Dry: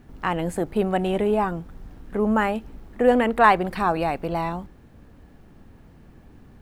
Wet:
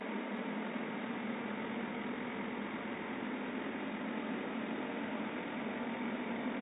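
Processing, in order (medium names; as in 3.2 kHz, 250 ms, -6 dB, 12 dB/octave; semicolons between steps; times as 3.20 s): fifteen-band graphic EQ 630 Hz -5 dB, 1.6 kHz -4 dB, 4 kHz +8 dB; in parallel at +1.5 dB: compressor with a negative ratio -30 dBFS; on the sum: Paulstretch 20×, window 0.25 s, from 4.76 s; FFT band-pass 370–7100 Hz; pitch shift -11 st; on a send: frequency-shifting echo 372 ms, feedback 52%, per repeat -39 Hz, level -14 dB; on the sum: gate -60 dBFS, range -14 dB; trim +12.5 dB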